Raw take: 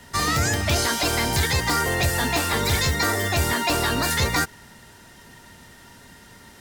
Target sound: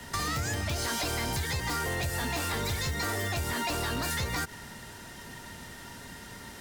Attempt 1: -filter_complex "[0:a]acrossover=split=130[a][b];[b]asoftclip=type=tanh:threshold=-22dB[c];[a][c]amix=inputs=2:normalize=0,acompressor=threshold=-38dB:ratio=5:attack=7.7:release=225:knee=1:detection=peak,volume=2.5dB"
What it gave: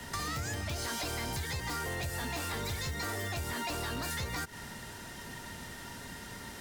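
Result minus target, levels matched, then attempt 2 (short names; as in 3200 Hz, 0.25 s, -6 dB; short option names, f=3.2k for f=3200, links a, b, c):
compressor: peak gain reduction +5 dB
-filter_complex "[0:a]acrossover=split=130[a][b];[b]asoftclip=type=tanh:threshold=-22dB[c];[a][c]amix=inputs=2:normalize=0,acompressor=threshold=-32dB:ratio=5:attack=7.7:release=225:knee=1:detection=peak,volume=2.5dB"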